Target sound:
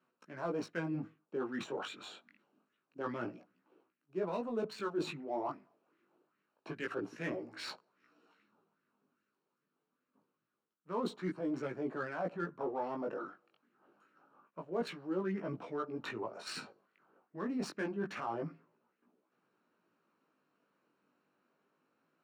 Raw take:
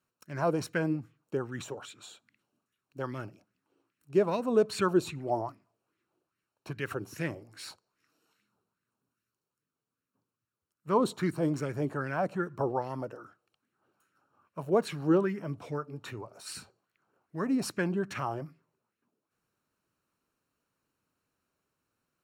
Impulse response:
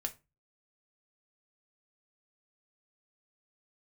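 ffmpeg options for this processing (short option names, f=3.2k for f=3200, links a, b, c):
-af "highpass=f=180:w=0.5412,highpass=f=180:w=1.3066,adynamicsmooth=sensitivity=7:basefreq=2.9k,flanger=delay=16:depth=4.7:speed=0.26,areverse,acompressor=threshold=-47dB:ratio=4,areverse,volume=10dB"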